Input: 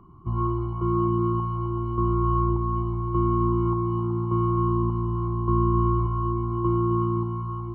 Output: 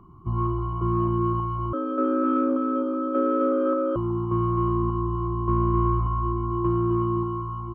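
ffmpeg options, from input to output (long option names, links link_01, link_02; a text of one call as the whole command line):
ffmpeg -i in.wav -filter_complex "[0:a]acontrast=68,aecho=1:1:59|257:0.133|0.316,asettb=1/sr,asplit=3[link_01][link_02][link_03];[link_01]atrim=end=1.734[link_04];[link_02]atrim=start=1.73:end=3.96,asetpts=PTS-STARTPTS,afade=type=in:duration=0.004:curve=qsin,afade=type=out:start_time=2.226:duration=0.004:curve=qsin,afreqshift=200[link_05];[link_03]atrim=start=3.956[link_06];[link_04][link_05]acrossfade=duration=0.004:curve1=hsin:curve2=qsin[link_07];[link_07][link_06]acrossfade=duration=0.004:curve1=qsin:curve2=hsin,volume=-6dB" out.wav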